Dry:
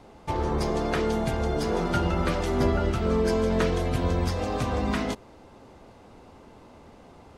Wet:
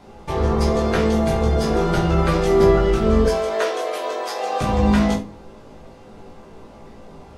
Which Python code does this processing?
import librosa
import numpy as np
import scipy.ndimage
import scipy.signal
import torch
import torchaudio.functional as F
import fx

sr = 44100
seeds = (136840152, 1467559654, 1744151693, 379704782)

y = fx.highpass(x, sr, hz=450.0, slope=24, at=(3.24, 4.61))
y = fx.room_early_taps(y, sr, ms=(18, 67), db=(-4.5, -15.0))
y = fx.room_shoebox(y, sr, seeds[0], volume_m3=140.0, walls='furnished', distance_m=1.2)
y = y * librosa.db_to_amplitude(2.5)